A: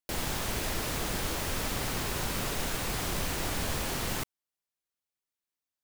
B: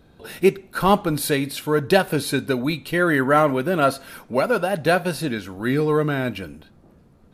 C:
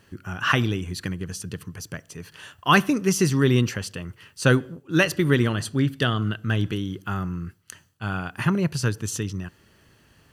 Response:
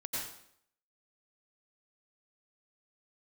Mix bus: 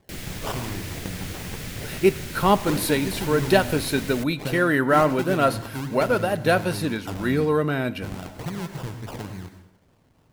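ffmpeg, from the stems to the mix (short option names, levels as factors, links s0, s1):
-filter_complex "[0:a]equalizer=f=125:t=o:w=1:g=7,equalizer=f=1000:t=o:w=1:g=-11,equalizer=f=2000:t=o:w=1:g=5,volume=0.668[s0];[1:a]adelay=1600,volume=0.794,asplit=2[s1][s2];[s2]volume=0.0841[s3];[2:a]acompressor=threshold=0.0708:ratio=4,acrusher=samples=29:mix=1:aa=0.000001:lfo=1:lforange=17.4:lforate=3.5,volume=0.422,asplit=2[s4][s5];[s5]volume=0.501[s6];[3:a]atrim=start_sample=2205[s7];[s3][s6]amix=inputs=2:normalize=0[s8];[s8][s7]afir=irnorm=-1:irlink=0[s9];[s0][s1][s4][s9]amix=inputs=4:normalize=0"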